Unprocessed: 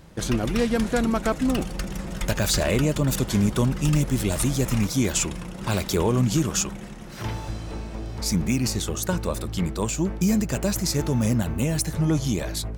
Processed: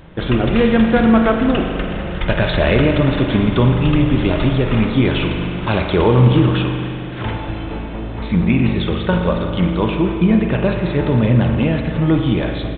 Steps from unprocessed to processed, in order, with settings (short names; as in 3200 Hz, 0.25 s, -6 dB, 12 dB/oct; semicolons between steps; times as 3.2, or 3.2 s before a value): notches 50/100/150/200/250 Hz; spring tank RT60 2.4 s, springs 40 ms, chirp 20 ms, DRR 3 dB; downsampling 8000 Hz; gain +8 dB